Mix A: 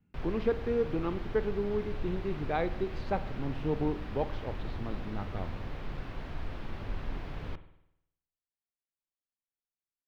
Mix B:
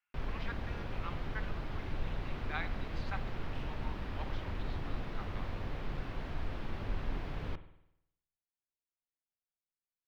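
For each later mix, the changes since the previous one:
speech: add HPF 1100 Hz 24 dB/oct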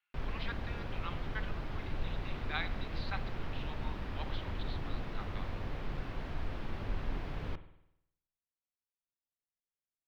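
speech: add synth low-pass 4000 Hz, resonance Q 2.8

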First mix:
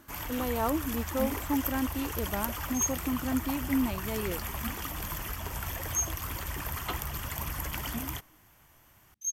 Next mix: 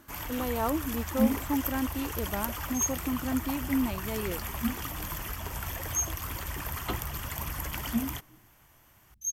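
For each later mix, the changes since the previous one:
second sound: remove weighting filter A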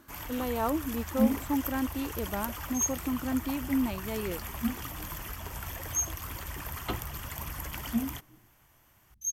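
first sound -3.0 dB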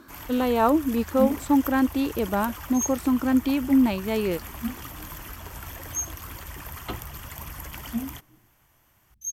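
speech +9.5 dB

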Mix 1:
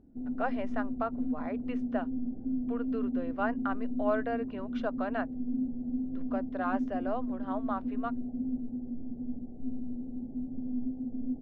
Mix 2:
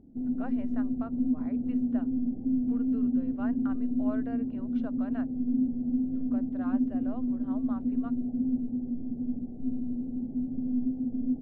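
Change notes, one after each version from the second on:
speech -11.5 dB; master: add bell 180 Hz +6 dB 2.3 oct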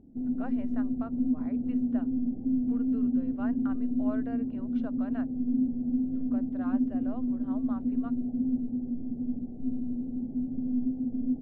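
none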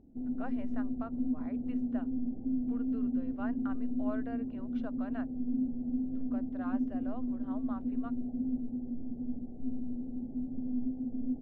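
master: add bell 180 Hz -6 dB 2.3 oct

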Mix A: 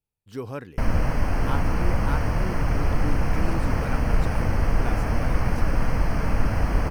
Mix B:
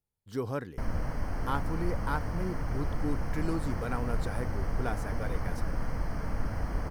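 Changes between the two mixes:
background -10.0 dB; master: add bell 2600 Hz -9.5 dB 0.29 oct

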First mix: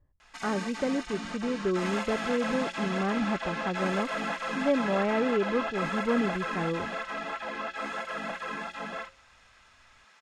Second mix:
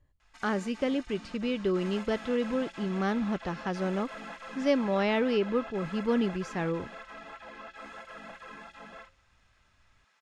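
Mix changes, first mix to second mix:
speech: remove LPF 1500 Hz; background -10.5 dB

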